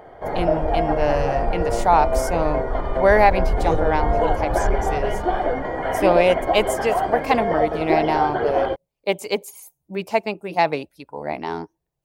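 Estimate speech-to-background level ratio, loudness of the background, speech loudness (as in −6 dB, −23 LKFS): 0.0 dB, −23.0 LKFS, −23.0 LKFS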